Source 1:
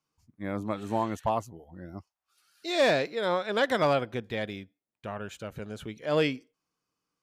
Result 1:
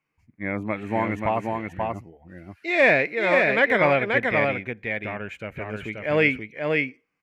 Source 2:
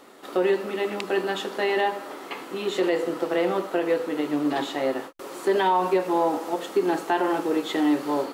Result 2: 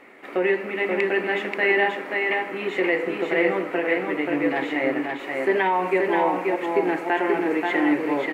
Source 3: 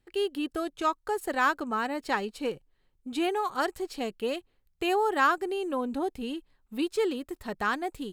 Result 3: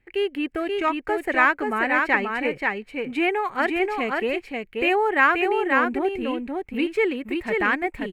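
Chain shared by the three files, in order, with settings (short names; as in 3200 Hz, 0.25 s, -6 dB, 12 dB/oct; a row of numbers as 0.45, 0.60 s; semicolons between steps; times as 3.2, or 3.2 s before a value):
EQ curve 730 Hz 0 dB, 1300 Hz -2 dB, 2200 Hz +13 dB, 3500 Hz -9 dB, 5300 Hz -12 dB; on a send: echo 0.532 s -3.5 dB; on the sum: match loudness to -23 LUFS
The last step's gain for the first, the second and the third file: +4.0, -0.5, +4.5 dB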